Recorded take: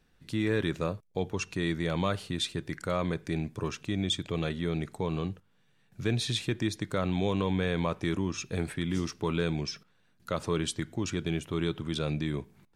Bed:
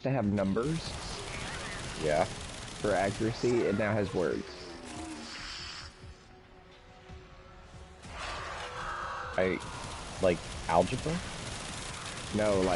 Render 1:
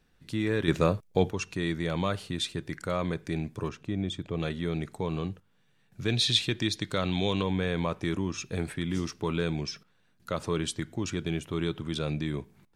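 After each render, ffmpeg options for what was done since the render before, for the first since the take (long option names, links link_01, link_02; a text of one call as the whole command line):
ffmpeg -i in.wav -filter_complex "[0:a]asettb=1/sr,asplit=3[link_01][link_02][link_03];[link_01]atrim=end=0.684[link_04];[link_02]atrim=start=0.68:end=1.31,asetpts=PTS-STARTPTS,afade=type=in:duration=0.004:curve=qsin,afade=type=out:start_time=0.626:duration=0.004:curve=qsin,acontrast=90[link_05];[link_03]atrim=start=1.306[link_06];[link_04][link_05]acrossfade=duration=0.004:curve1=hsin:curve2=qsin[link_07];[link_07][link_06]acrossfade=duration=0.004:curve1=qsin:curve2=hsin,asettb=1/sr,asplit=3[link_08][link_09][link_10];[link_08]atrim=end=3.694[link_11];[link_09]atrim=start=3.69:end=4.4,asetpts=PTS-STARTPTS,afade=type=in:duration=0.004:curve=qsin,afade=type=out:start_time=0.706:duration=0.004:curve=qsin,highshelf=frequency=2000:gain=-11[link_12];[link_10]atrim=start=4.396[link_13];[link_11][link_12]acrossfade=duration=0.004:curve1=hsin:curve2=qsin[link_14];[link_14][link_13]acrossfade=duration=0.004:curve1=qsin:curve2=hsin,asettb=1/sr,asplit=3[link_15][link_16][link_17];[link_15]atrim=end=6.084[link_18];[link_16]atrim=start=6.08:end=7.43,asetpts=PTS-STARTPTS,afade=type=in:duration=0.004:curve=qsin,afade=type=out:start_time=1.346:duration=0.004:curve=qsin,equalizer=frequency=3800:width=0.97:gain=9[link_19];[link_17]atrim=start=7.426[link_20];[link_18][link_19]acrossfade=duration=0.004:curve1=hsin:curve2=qsin[link_21];[link_21][link_20]acrossfade=duration=0.004:curve1=qsin:curve2=hsin" out.wav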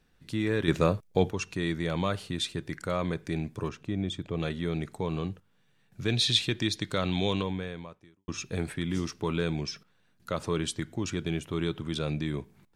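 ffmpeg -i in.wav -filter_complex "[0:a]asplit=2[link_01][link_02];[link_01]atrim=end=8.28,asetpts=PTS-STARTPTS,afade=type=out:start_time=7.33:duration=0.95:curve=qua[link_03];[link_02]atrim=start=8.28,asetpts=PTS-STARTPTS,afade=type=in:duration=0.004:curve=hsin[link_04];[link_03][link_04]concat=n=2:v=0:a=1" out.wav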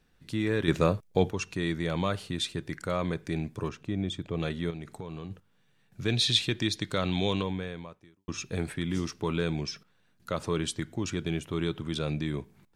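ffmpeg -i in.wav -filter_complex "[0:a]asettb=1/sr,asplit=3[link_01][link_02][link_03];[link_01]atrim=end=4.704[link_04];[link_02]atrim=start=4.7:end=5.31,asetpts=PTS-STARTPTS,afade=type=in:duration=0.004:curve=qsin,afade=type=out:start_time=0.606:duration=0.004:curve=qsin,acompressor=threshold=-35dB:ratio=5:attack=3.2:release=140:knee=1:detection=peak[link_05];[link_03]atrim=start=5.306[link_06];[link_04][link_05]acrossfade=duration=0.004:curve1=hsin:curve2=qsin[link_07];[link_07][link_06]acrossfade=duration=0.004:curve1=qsin:curve2=hsin" out.wav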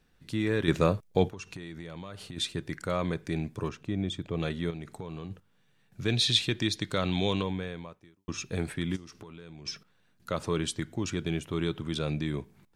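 ffmpeg -i in.wav -filter_complex "[0:a]asplit=3[link_01][link_02][link_03];[link_01]afade=type=out:start_time=1.28:duration=0.02[link_04];[link_02]acompressor=threshold=-37dB:ratio=8:attack=3.2:release=140:knee=1:detection=peak,afade=type=in:start_time=1.28:duration=0.02,afade=type=out:start_time=2.36:duration=0.02[link_05];[link_03]afade=type=in:start_time=2.36:duration=0.02[link_06];[link_04][link_05][link_06]amix=inputs=3:normalize=0,asplit=3[link_07][link_08][link_09];[link_07]afade=type=out:start_time=8.95:duration=0.02[link_10];[link_08]acompressor=threshold=-42dB:ratio=12:attack=3.2:release=140:knee=1:detection=peak,afade=type=in:start_time=8.95:duration=0.02,afade=type=out:start_time=9.65:duration=0.02[link_11];[link_09]afade=type=in:start_time=9.65:duration=0.02[link_12];[link_10][link_11][link_12]amix=inputs=3:normalize=0" out.wav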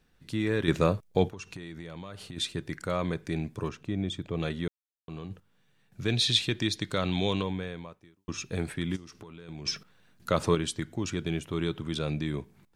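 ffmpeg -i in.wav -filter_complex "[0:a]asettb=1/sr,asplit=3[link_01][link_02][link_03];[link_01]atrim=end=9.484[link_04];[link_02]atrim=start=9.48:end=10.55,asetpts=PTS-STARTPTS,afade=type=in:duration=0.004:curve=qsin,afade=type=out:start_time=1.066:duration=0.004:curve=qsin,acontrast=46[link_05];[link_03]atrim=start=10.546[link_06];[link_04][link_05]acrossfade=duration=0.004:curve1=hsin:curve2=qsin[link_07];[link_07][link_06]acrossfade=duration=0.004:curve1=qsin:curve2=hsin,asplit=3[link_08][link_09][link_10];[link_08]atrim=end=4.68,asetpts=PTS-STARTPTS,afade=type=out:start_time=4.676:duration=0.004:curve=hsin[link_11];[link_09]atrim=start=4.68:end=5.08,asetpts=PTS-STARTPTS,volume=0[link_12];[link_10]atrim=start=5.08,asetpts=PTS-STARTPTS,afade=type=in:duration=0.004:curve=hsin[link_13];[link_11][link_12][link_13]concat=n=3:v=0:a=1" out.wav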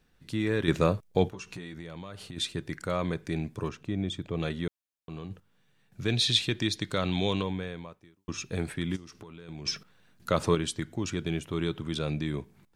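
ffmpeg -i in.wav -filter_complex "[0:a]asettb=1/sr,asplit=3[link_01][link_02][link_03];[link_01]atrim=end=1.304[link_04];[link_02]atrim=start=1.3:end=1.74,asetpts=PTS-STARTPTS,afade=type=in:duration=0.004:curve=qsin,afade=type=out:start_time=0.436:duration=0.004:curve=qsin,asplit=2[link_05][link_06];[link_06]adelay=16,volume=-5.5dB[link_07];[link_05][link_07]amix=inputs=2:normalize=0,atrim=end_sample=19404[link_08];[link_03]atrim=start=1.736[link_09];[link_04][link_08]acrossfade=duration=0.004:curve1=hsin:curve2=qsin[link_10];[link_10][link_09]acrossfade=duration=0.004:curve1=qsin:curve2=hsin" out.wav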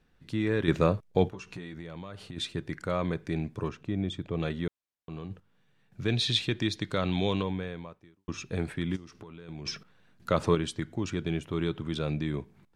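ffmpeg -i in.wav -af "aemphasis=mode=reproduction:type=cd" out.wav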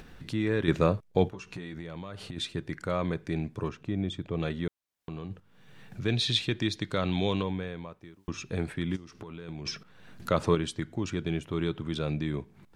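ffmpeg -i in.wav -af "acompressor=mode=upward:threshold=-34dB:ratio=2.5" out.wav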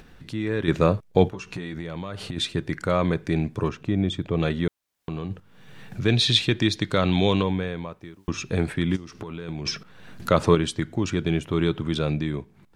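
ffmpeg -i in.wav -af "dynaudnorm=framelen=140:gausssize=11:maxgain=7.5dB" out.wav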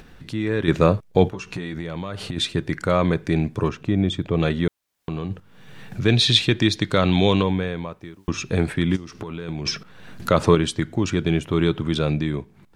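ffmpeg -i in.wav -af "volume=3dB,alimiter=limit=-3dB:level=0:latency=1" out.wav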